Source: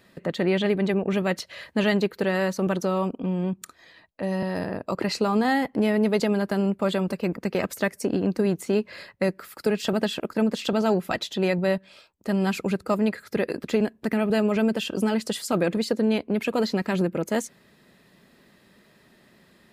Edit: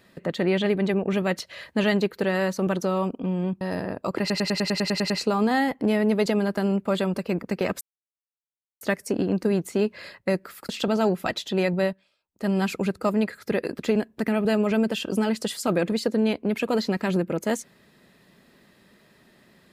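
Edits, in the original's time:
3.61–4.45 s: delete
5.04 s: stutter 0.10 s, 10 plays
7.75 s: insert silence 1.00 s
9.63–10.54 s: delete
11.69–12.32 s: dip -21.5 dB, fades 0.31 s quadratic

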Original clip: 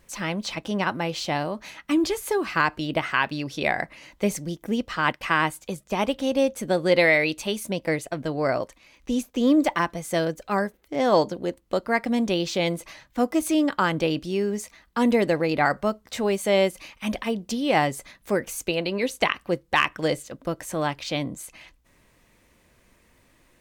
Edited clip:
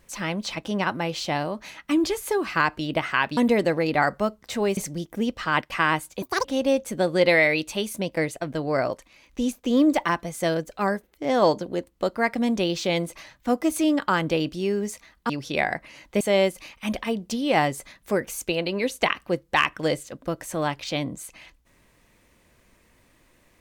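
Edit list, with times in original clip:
3.37–4.28 s: swap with 15.00–16.40 s
5.73–6.15 s: speed 186%

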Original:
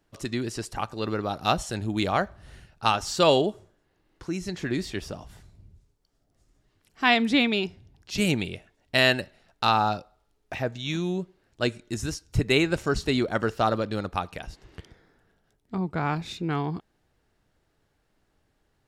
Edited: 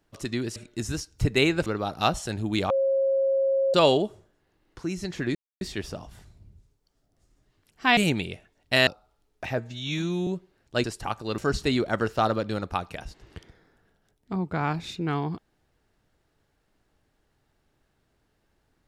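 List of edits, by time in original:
0.56–1.10 s: swap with 11.70–12.80 s
2.14–3.18 s: bleep 541 Hz -20 dBFS
4.79 s: insert silence 0.26 s
7.15–8.19 s: delete
9.09–9.96 s: delete
10.67–11.13 s: stretch 1.5×

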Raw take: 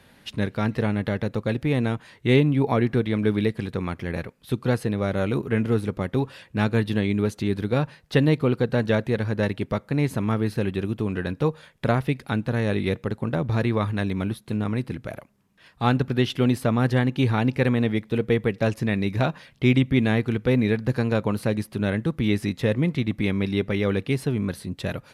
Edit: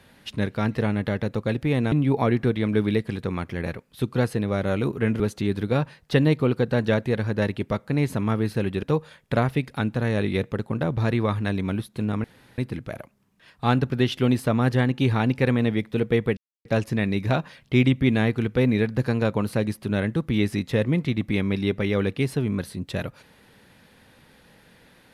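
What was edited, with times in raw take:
1.92–2.42 s: delete
5.70–7.21 s: delete
10.84–11.35 s: delete
14.76 s: insert room tone 0.34 s
18.55 s: insert silence 0.28 s

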